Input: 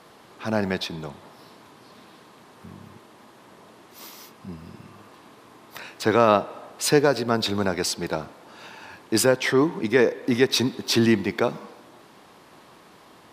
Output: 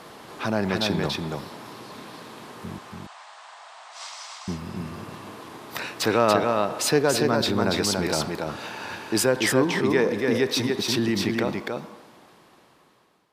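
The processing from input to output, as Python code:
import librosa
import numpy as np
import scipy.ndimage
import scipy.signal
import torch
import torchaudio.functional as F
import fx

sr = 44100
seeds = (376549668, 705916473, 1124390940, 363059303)

p1 = fx.fade_out_tail(x, sr, length_s=3.78)
p2 = fx.cheby1_bandpass(p1, sr, low_hz=680.0, high_hz=8400.0, order=4, at=(2.78, 4.48))
p3 = fx.over_compress(p2, sr, threshold_db=-32.0, ratio=-1.0)
p4 = p2 + (p3 * librosa.db_to_amplitude(-1.0))
p5 = p4 + 10.0 ** (-3.5 / 20.0) * np.pad(p4, (int(285 * sr / 1000.0), 0))[:len(p4)]
y = p5 * librosa.db_to_amplitude(-3.0)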